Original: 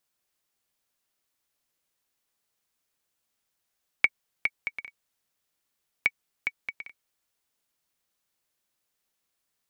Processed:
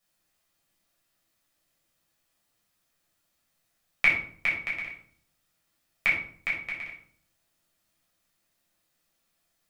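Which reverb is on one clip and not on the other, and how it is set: shoebox room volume 640 m³, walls furnished, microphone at 6.3 m; gain -2.5 dB

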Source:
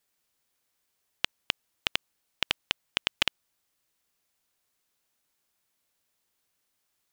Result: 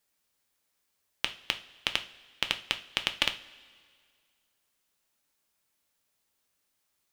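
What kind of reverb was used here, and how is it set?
two-slope reverb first 0.34 s, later 2 s, from -18 dB, DRR 6.5 dB; gain -1 dB

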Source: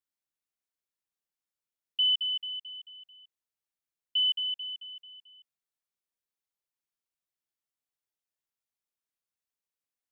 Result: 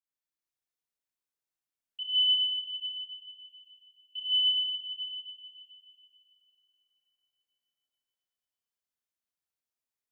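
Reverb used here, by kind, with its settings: Schroeder reverb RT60 3.5 s, combs from 25 ms, DRR -9.5 dB; gain -11.5 dB

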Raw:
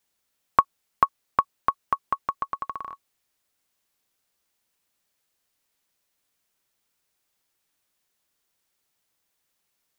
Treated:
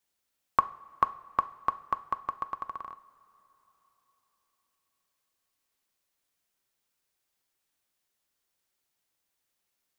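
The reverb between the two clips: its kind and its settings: two-slope reverb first 0.48 s, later 4.3 s, from -18 dB, DRR 11.5 dB; gain -5 dB

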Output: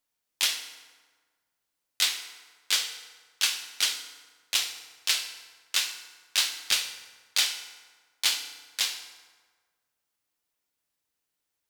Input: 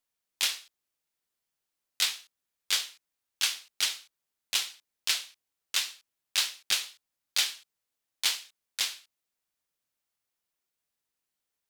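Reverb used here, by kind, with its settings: FDN reverb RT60 1.5 s, low-frequency decay 1×, high-frequency decay 0.65×, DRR 6.5 dB; gain +2 dB

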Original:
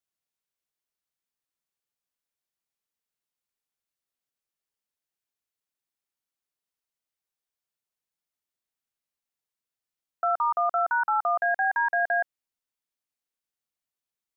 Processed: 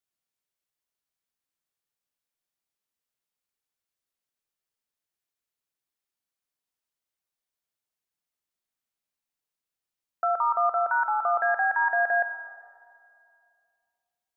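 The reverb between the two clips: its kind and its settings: digital reverb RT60 2.4 s, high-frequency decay 0.5×, pre-delay 15 ms, DRR 10 dB

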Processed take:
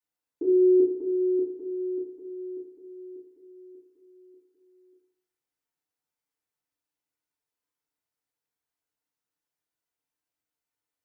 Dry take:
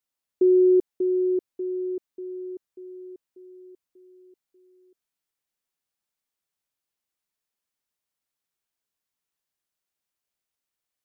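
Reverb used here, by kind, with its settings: FDN reverb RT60 0.68 s, low-frequency decay 0.85×, high-frequency decay 0.35×, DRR -7 dB; gain -9.5 dB

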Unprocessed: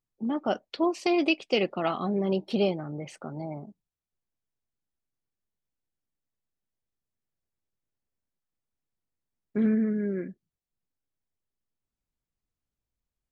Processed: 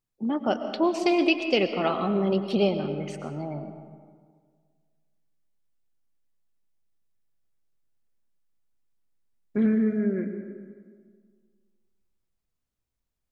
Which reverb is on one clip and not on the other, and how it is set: digital reverb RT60 1.8 s, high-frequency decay 0.55×, pre-delay 75 ms, DRR 8 dB; gain +2 dB

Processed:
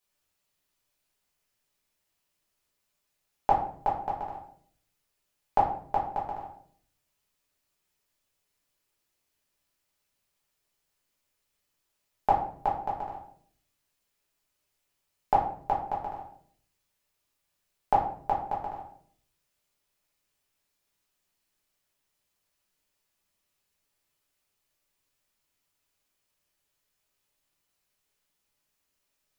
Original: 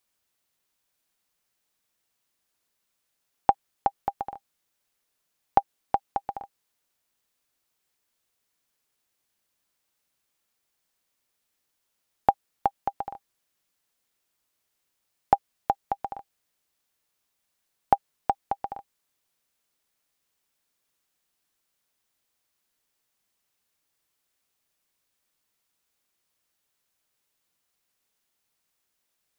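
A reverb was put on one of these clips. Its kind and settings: shoebox room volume 72 m³, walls mixed, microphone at 1.4 m; gain -7 dB

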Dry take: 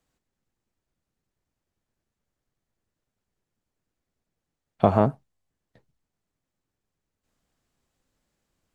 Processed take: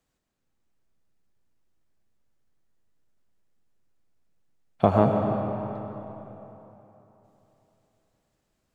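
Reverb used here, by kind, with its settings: digital reverb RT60 3.5 s, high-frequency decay 0.7×, pre-delay 65 ms, DRR 2.5 dB; gain -1 dB

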